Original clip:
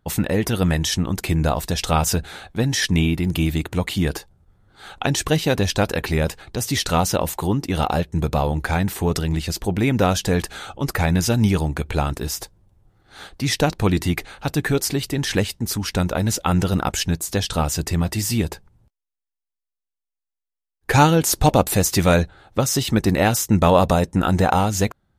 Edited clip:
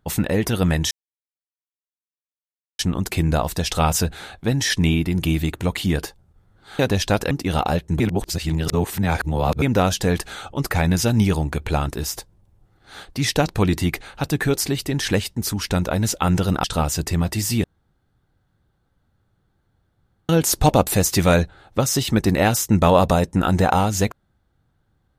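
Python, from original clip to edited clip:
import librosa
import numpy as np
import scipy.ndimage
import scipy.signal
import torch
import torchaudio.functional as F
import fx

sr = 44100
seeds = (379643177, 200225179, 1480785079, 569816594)

y = fx.edit(x, sr, fx.insert_silence(at_s=0.91, length_s=1.88),
    fx.cut(start_s=4.91, length_s=0.56),
    fx.cut(start_s=5.99, length_s=1.56),
    fx.reverse_span(start_s=8.24, length_s=1.62),
    fx.cut(start_s=16.88, length_s=0.56),
    fx.room_tone_fill(start_s=18.44, length_s=2.65), tone=tone)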